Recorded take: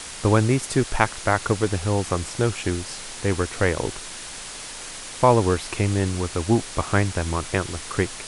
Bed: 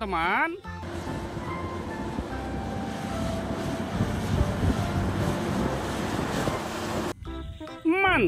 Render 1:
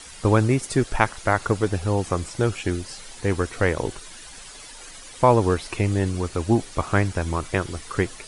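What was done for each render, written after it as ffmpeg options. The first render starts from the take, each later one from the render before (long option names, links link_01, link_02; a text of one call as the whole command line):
ffmpeg -i in.wav -af "afftdn=noise_reduction=11:noise_floor=-37" out.wav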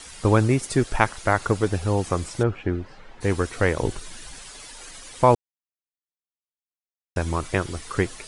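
ffmpeg -i in.wav -filter_complex "[0:a]asplit=3[link_01][link_02][link_03];[link_01]afade=type=out:start_time=2.42:duration=0.02[link_04];[link_02]lowpass=1700,afade=type=in:start_time=2.42:duration=0.02,afade=type=out:start_time=3.2:duration=0.02[link_05];[link_03]afade=type=in:start_time=3.2:duration=0.02[link_06];[link_04][link_05][link_06]amix=inputs=3:normalize=0,asettb=1/sr,asplit=3[link_07][link_08][link_09];[link_07]atrim=end=3.824[link_10];[link_08]atrim=start=3.82:end=4.37,asetpts=PTS-STARTPTS,afade=type=in:duration=0.004:curve=qsin,afade=type=out:start_time=0.546:duration=0.004:curve=qsin,lowshelf=frequency=250:gain=6.5[link_11];[link_09]atrim=start=4.366[link_12];[link_10][link_11]acrossfade=duration=0.004:curve1=hsin:curve2=qsin[link_13];[link_13][link_12]acrossfade=duration=0.004:curve1=qsin:curve2=hsin,asplit=3[link_14][link_15][link_16];[link_14]atrim=end=5.35,asetpts=PTS-STARTPTS,afade=type=out:start_time=5.346:duration=0.004:curve=hsin[link_17];[link_15]atrim=start=5.35:end=7.16,asetpts=PTS-STARTPTS,volume=0[link_18];[link_16]atrim=start=7.16,asetpts=PTS-STARTPTS,afade=type=in:duration=0.004:curve=hsin[link_19];[link_17][link_18][link_19]concat=n=3:v=0:a=1" out.wav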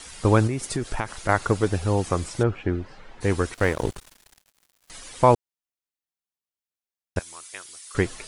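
ffmpeg -i in.wav -filter_complex "[0:a]asettb=1/sr,asplit=3[link_01][link_02][link_03];[link_01]atrim=end=0.474[link_04];[link_02]atrim=start=0.47:end=1.29,asetpts=PTS-STARTPTS,afade=type=in:duration=0.004:curve=qsin,afade=type=out:start_time=0.816:duration=0.004:curve=qsin,acompressor=threshold=-22dB:ratio=6:attack=3.2:release=140:knee=1:detection=peak[link_05];[link_03]atrim=start=1.286[link_06];[link_04][link_05]acrossfade=duration=0.004:curve1=hsin:curve2=qsin[link_07];[link_07][link_06]acrossfade=duration=0.004:curve1=qsin:curve2=hsin,asettb=1/sr,asplit=3[link_08][link_09][link_10];[link_08]atrim=end=3.544[link_11];[link_09]atrim=start=3.54:end=4.9,asetpts=PTS-STARTPTS,afade=type=in:duration=0.004:curve=qsin,afade=type=out:start_time=1.356:duration=0.004:curve=qsin,aeval=exprs='sgn(val(0))*max(abs(val(0))-0.02,0)':channel_layout=same[link_12];[link_10]atrim=start=4.896[link_13];[link_11][link_12]acrossfade=duration=0.004:curve1=hsin:curve2=qsin[link_14];[link_14][link_13]acrossfade=duration=0.004:curve1=qsin:curve2=hsin,asettb=1/sr,asplit=3[link_15][link_16][link_17];[link_15]atrim=end=7.194[link_18];[link_16]atrim=start=7.19:end=7.95,asetpts=PTS-STARTPTS,afade=type=in:duration=0.004:curve=qsin,afade=type=out:start_time=0.756:duration=0.004:curve=qsin,aderivative[link_19];[link_17]atrim=start=7.946[link_20];[link_18][link_19]acrossfade=duration=0.004:curve1=hsin:curve2=qsin[link_21];[link_21][link_20]acrossfade=duration=0.004:curve1=qsin:curve2=hsin" out.wav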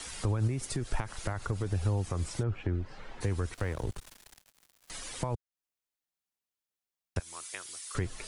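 ffmpeg -i in.wav -filter_complex "[0:a]alimiter=limit=-14dB:level=0:latency=1:release=69,acrossover=split=130[link_01][link_02];[link_02]acompressor=threshold=-37dB:ratio=3[link_03];[link_01][link_03]amix=inputs=2:normalize=0" out.wav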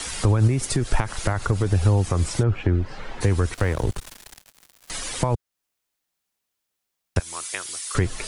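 ffmpeg -i in.wav -af "volume=11dB" out.wav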